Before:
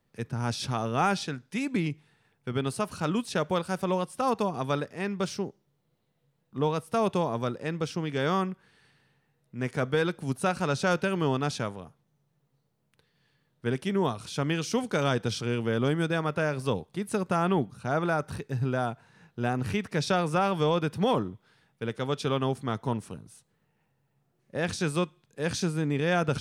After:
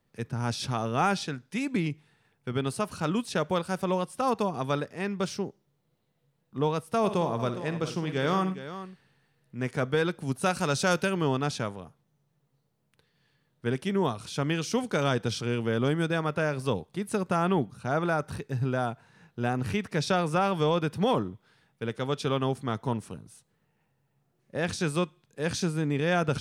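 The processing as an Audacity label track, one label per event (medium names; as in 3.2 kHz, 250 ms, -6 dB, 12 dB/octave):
6.980000	9.570000	multi-tap echo 59/101/412 ms -11/-17/-12.5 dB
10.430000	11.100000	treble shelf 4.7 kHz +10 dB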